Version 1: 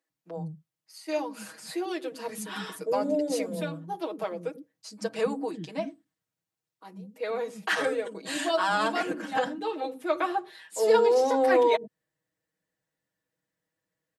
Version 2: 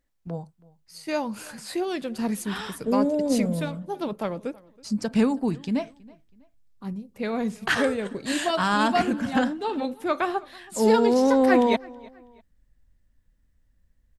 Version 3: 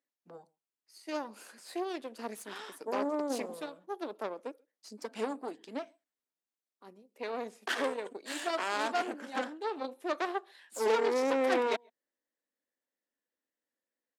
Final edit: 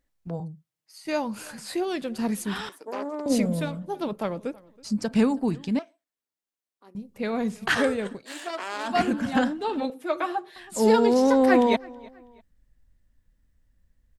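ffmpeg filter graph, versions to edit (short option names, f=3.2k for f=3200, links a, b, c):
-filter_complex "[0:a]asplit=2[a][b];[2:a]asplit=3[c][d][e];[1:a]asplit=6[f][g][h][i][j][k];[f]atrim=end=0.402[l];[a]atrim=start=0.398:end=1.052[m];[g]atrim=start=1.048:end=2.692[n];[c]atrim=start=2.688:end=3.262[o];[h]atrim=start=3.258:end=5.792[p];[d]atrim=start=5.788:end=6.952[q];[i]atrim=start=6.948:end=8.25[r];[e]atrim=start=8.09:end=8.99[s];[j]atrim=start=8.83:end=9.902[t];[b]atrim=start=9.898:end=10.562[u];[k]atrim=start=10.558[v];[l][m]acrossfade=d=0.004:c1=hsin:c2=hsin[w];[w][n]acrossfade=d=0.004:c1=hsin:c2=hsin[x];[x][o]acrossfade=d=0.004:c1=hsin:c2=hsin[y];[y][p]acrossfade=d=0.004:c1=hsin:c2=hsin[z];[z][q]acrossfade=d=0.004:c1=hsin:c2=hsin[aa];[aa][r]acrossfade=d=0.004:c1=hsin:c2=hsin[ab];[ab][s]acrossfade=d=0.16:c1=tri:c2=tri[ac];[ac][t]acrossfade=d=0.16:c1=tri:c2=tri[ad];[ad][u]acrossfade=d=0.004:c1=hsin:c2=hsin[ae];[ae][v]acrossfade=d=0.004:c1=hsin:c2=hsin"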